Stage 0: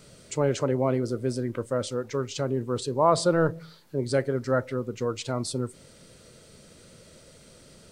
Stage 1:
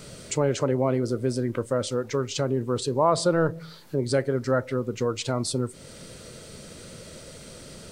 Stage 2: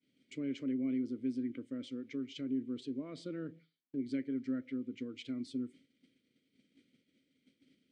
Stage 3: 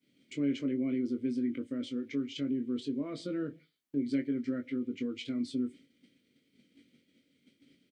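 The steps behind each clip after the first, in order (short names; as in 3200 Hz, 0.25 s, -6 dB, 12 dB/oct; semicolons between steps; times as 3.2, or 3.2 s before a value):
compressor 1.5:1, threshold -41 dBFS, peak gain reduction 9.5 dB; gain +8.5 dB
vowel filter i; expander -47 dBFS; gain -2.5 dB
doubler 21 ms -6.5 dB; gain +5 dB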